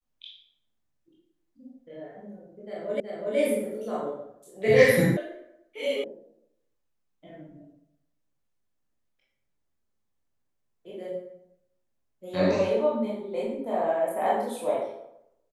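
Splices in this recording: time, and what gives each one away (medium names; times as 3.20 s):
3.00 s: repeat of the last 0.37 s
5.17 s: sound stops dead
6.04 s: sound stops dead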